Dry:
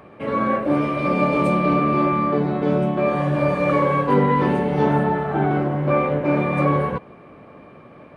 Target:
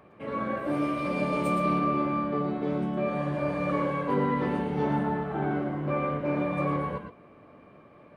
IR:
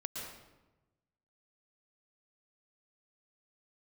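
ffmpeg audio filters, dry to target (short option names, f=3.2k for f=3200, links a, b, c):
-filter_complex "[0:a]asettb=1/sr,asplit=3[a][b][c];[a]atrim=end=0.574[d];[b]atrim=start=0.57:end=1.79,asetpts=PTS-STARTPTS,afade=t=in:d=0.004:c=qsin,afade=t=out:st=1.216:d=0.004:c=qsin,aemphasis=mode=production:type=50kf[e];[c]atrim=start=1.786[f];[d][e]acrossfade=d=0.004:c1=hsin:c2=qsin[g];[g][f]acrossfade=d=0.004:c1=qsin:c2=hsin[h];[1:a]atrim=start_sample=2205,afade=t=out:st=0.17:d=0.01,atrim=end_sample=7938[i];[h][i]afir=irnorm=-1:irlink=0,volume=-6.5dB"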